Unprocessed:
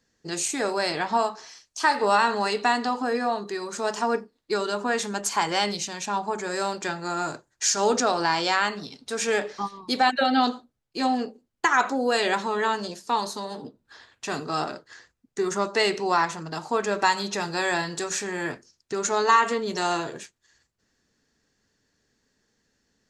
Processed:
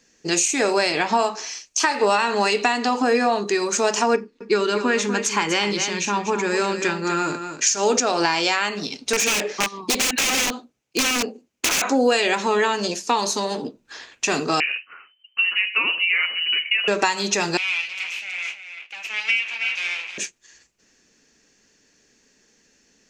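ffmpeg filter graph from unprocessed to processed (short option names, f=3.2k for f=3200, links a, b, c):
-filter_complex "[0:a]asettb=1/sr,asplit=3[a][b][c];[a]atrim=end=4.164[d];[b]atrim=start=4.16:end=7.67,asetpts=PTS-STARTPTS,afade=t=in:d=0.004:c=qsin,afade=t=out:st=3.506:d=0.004:c=qsin,lowpass=f=2.5k:p=1,equalizer=f=690:t=o:w=0.54:g=-11.5,aecho=1:1:245:0.335,atrim=end_sample=154791[e];[c]atrim=start=7.666[f];[d][e]acrossfade=d=0.004:c1=hsin:c2=qsin[g];[g][f]acrossfade=d=0.004:c1=qsin:c2=hsin,asettb=1/sr,asplit=3[h][i][j];[h]atrim=end=9.134[k];[i]atrim=start=9.13:end=11.82,asetpts=PTS-STARTPTS,afade=t=in:d=0.004:c=qsin,afade=t=out:st=2.686:d=0.004:c=qsin,highpass=73,highshelf=f=2.4k:g=-2.5,aeval=exprs='(mod(12.6*val(0)+1,2)-1)/12.6':c=same[l];[j]atrim=start=11.816[m];[k][l]acrossfade=d=0.004:c1=hsin:c2=qsin[n];[n][m]acrossfade=d=0.004:c1=qsin:c2=hsin,asettb=1/sr,asplit=3[o][p][q];[o]atrim=end=14.604[r];[p]atrim=start=14.6:end=16.88,asetpts=PTS-STARTPTS,afade=t=in:d=0.004:c=qsin,afade=t=out:st=2.276:d=0.004:c=qsin,flanger=delay=5.7:depth=5.6:regen=-46:speed=1.8:shape=triangular,asubboost=boost=11.5:cutoff=150,lowpass=f=2.6k:t=q:w=0.5098,lowpass=f=2.6k:t=q:w=0.6013,lowpass=f=2.6k:t=q:w=0.9,lowpass=f=2.6k:t=q:w=2.563,afreqshift=-3100[s];[q]atrim=start=16.876[t];[r][s]acrossfade=d=0.004:c1=hsin:c2=qsin[u];[u][t]acrossfade=d=0.004:c1=qsin:c2=hsin,asettb=1/sr,asplit=3[v][w][x];[v]atrim=end=17.574[y];[w]atrim=start=17.57:end=20.18,asetpts=PTS-STARTPTS,afade=t=in:d=0.004:c=qsin,afade=t=out:st=2.606:d=0.004:c=qsin,aecho=1:1:320:0.355,atrim=end_sample=115101,aeval=exprs='abs(val(0))':c=same,bandpass=f=2.6k:t=q:w=4.2[z];[x]atrim=start=20.176[aa];[y][z]acrossfade=d=0.004:c1=hsin:c2=qsin[ab];[ab][aa]acrossfade=d=0.004:c1=qsin:c2=hsin,equalizer=f=100:t=o:w=0.67:g=-9,equalizer=f=2.5k:t=o:w=0.67:g=11,equalizer=f=6.3k:t=o:w=0.67:g=11,acompressor=threshold=-23dB:ratio=6,equalizer=f=360:w=0.57:g=5.5,volume=5dB"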